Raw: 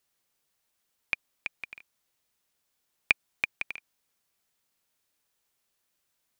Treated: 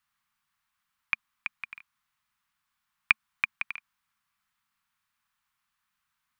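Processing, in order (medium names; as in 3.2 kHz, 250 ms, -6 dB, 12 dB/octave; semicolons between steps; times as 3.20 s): FFT filter 220 Hz 0 dB, 420 Hz -26 dB, 1.1 kHz +9 dB, 6.2 kHz -6 dB; trim -1 dB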